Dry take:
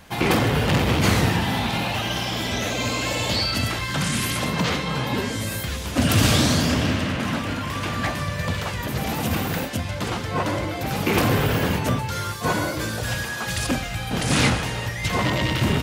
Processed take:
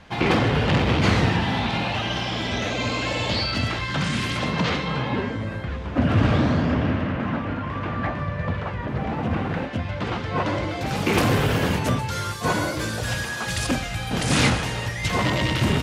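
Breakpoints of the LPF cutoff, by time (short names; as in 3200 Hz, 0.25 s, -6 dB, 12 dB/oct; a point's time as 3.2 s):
4.81 s 4500 Hz
5.4 s 1700 Hz
9.28 s 1700 Hz
10.53 s 4500 Hz
11.17 s 11000 Hz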